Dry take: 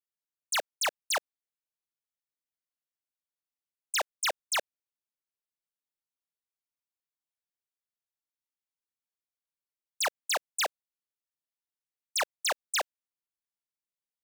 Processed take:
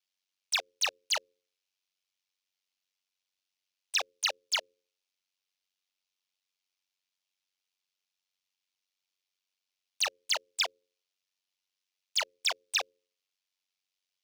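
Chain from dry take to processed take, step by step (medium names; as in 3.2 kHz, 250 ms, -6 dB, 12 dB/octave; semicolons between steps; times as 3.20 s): overdrive pedal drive 15 dB, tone 7.4 kHz, clips at -26 dBFS; high-order bell 3.8 kHz +9.5 dB; de-hum 81.09 Hz, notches 6; ring modulator 47 Hz; trim -3 dB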